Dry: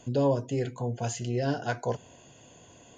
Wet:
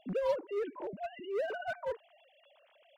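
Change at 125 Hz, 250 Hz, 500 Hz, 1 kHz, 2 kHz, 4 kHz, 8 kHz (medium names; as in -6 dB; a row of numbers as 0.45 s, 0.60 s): -22.0 dB, -13.5 dB, -4.0 dB, -6.0 dB, -3.0 dB, -8.5 dB, under -25 dB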